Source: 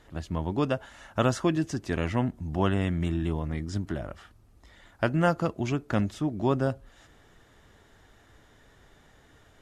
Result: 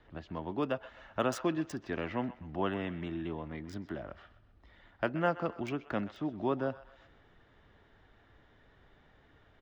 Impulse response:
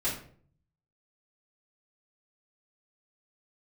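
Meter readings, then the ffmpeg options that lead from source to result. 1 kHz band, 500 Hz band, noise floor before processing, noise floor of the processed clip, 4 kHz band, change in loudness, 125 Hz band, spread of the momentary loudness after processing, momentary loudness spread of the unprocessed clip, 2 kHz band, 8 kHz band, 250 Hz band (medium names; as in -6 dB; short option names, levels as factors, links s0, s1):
-5.0 dB, -5.0 dB, -59 dBFS, -64 dBFS, -7.0 dB, -7.0 dB, -13.0 dB, 11 LU, 8 LU, -5.0 dB, no reading, -7.5 dB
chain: -filter_complex "[0:a]acrossover=split=200|530|4300[s0][s1][s2][s3];[s0]acompressor=threshold=0.00708:ratio=6[s4];[s2]aecho=1:1:128|256|384|512:0.188|0.0791|0.0332|0.014[s5];[s3]acrusher=bits=5:mix=0:aa=0.5[s6];[s4][s1][s5][s6]amix=inputs=4:normalize=0,volume=0.562"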